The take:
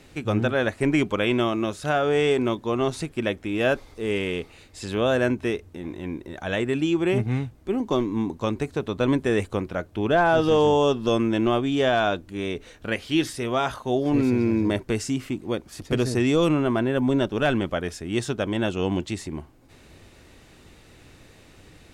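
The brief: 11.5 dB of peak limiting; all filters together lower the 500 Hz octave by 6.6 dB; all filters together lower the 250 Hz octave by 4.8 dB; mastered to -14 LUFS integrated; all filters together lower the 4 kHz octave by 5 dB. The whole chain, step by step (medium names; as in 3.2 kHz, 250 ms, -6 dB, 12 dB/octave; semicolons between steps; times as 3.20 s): peaking EQ 250 Hz -3.5 dB; peaking EQ 500 Hz -7.5 dB; peaking EQ 4 kHz -6.5 dB; trim +22 dB; peak limiter -4 dBFS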